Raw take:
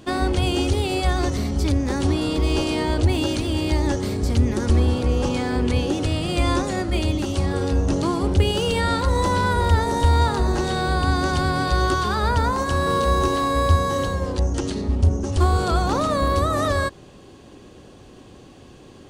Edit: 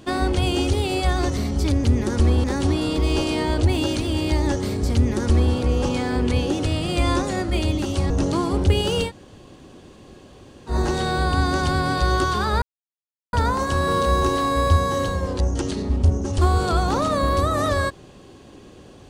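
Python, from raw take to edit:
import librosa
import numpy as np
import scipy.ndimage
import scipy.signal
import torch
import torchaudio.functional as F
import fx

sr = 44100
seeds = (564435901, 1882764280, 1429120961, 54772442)

y = fx.edit(x, sr, fx.duplicate(start_s=4.34, length_s=0.6, to_s=1.84),
    fx.cut(start_s=7.5, length_s=0.3),
    fx.room_tone_fill(start_s=8.77, length_s=1.64, crossfade_s=0.1),
    fx.insert_silence(at_s=12.32, length_s=0.71), tone=tone)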